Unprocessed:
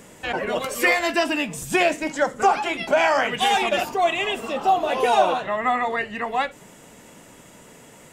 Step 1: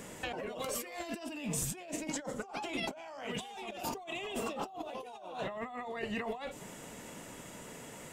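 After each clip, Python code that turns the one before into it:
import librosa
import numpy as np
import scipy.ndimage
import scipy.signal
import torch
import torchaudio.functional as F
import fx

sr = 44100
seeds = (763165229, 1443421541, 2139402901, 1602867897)

y = fx.dynamic_eq(x, sr, hz=1700.0, q=1.4, threshold_db=-38.0, ratio=4.0, max_db=-8)
y = fx.over_compress(y, sr, threshold_db=-33.0, ratio=-1.0)
y = y * librosa.db_to_amplitude(-8.5)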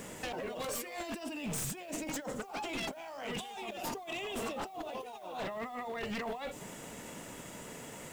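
y = np.minimum(x, 2.0 * 10.0 ** (-34.5 / 20.0) - x)
y = fx.leveller(y, sr, passes=2)
y = fx.dmg_noise_colour(y, sr, seeds[0], colour='blue', level_db=-63.0)
y = y * librosa.db_to_amplitude(-6.0)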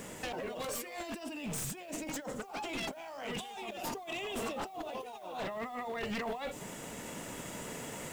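y = fx.rider(x, sr, range_db=4, speed_s=2.0)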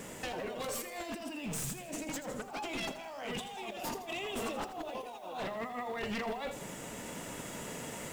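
y = fx.vibrato(x, sr, rate_hz=1.0, depth_cents=7.6)
y = fx.echo_feedback(y, sr, ms=82, feedback_pct=48, wet_db=-12.0)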